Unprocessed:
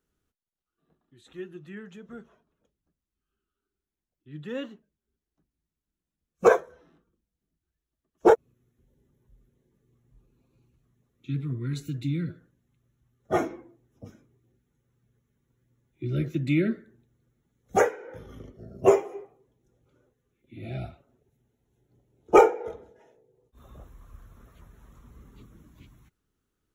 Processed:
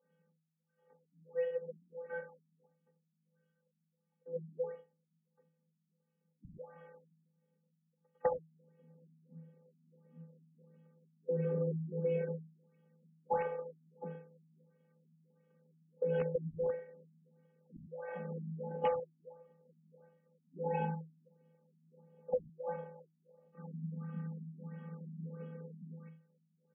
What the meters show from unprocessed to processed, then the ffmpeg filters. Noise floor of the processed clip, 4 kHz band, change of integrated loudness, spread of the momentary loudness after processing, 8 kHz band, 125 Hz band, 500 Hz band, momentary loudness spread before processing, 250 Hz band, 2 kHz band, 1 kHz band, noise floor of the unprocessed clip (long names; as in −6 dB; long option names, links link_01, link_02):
−83 dBFS, below −15 dB, −14.0 dB, 22 LU, below −30 dB, −8.5 dB, −11.0 dB, 21 LU, −13.5 dB, −15.5 dB, −13.5 dB, below −85 dBFS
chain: -filter_complex "[0:a]asplit=2[link_01][link_02];[link_02]aecho=0:1:43|59|78:0.224|0.168|0.178[link_03];[link_01][link_03]amix=inputs=2:normalize=0,afftfilt=real='hypot(re,im)*cos(PI*b)':imag='0':win_size=512:overlap=0.75,equalizer=frequency=2700:width=1.2:gain=-4,afreqshift=160,asplit=2[link_04][link_05];[link_05]aeval=exprs='(mod(15*val(0)+1,2)-1)/15':channel_layout=same,volume=-6dB[link_06];[link_04][link_06]amix=inputs=2:normalize=0,acompressor=threshold=-34dB:ratio=10,afftfilt=real='re*lt(b*sr/1024,270*pow(3500/270,0.5+0.5*sin(2*PI*1.5*pts/sr)))':imag='im*lt(b*sr/1024,270*pow(3500/270,0.5+0.5*sin(2*PI*1.5*pts/sr)))':win_size=1024:overlap=0.75,volume=4dB"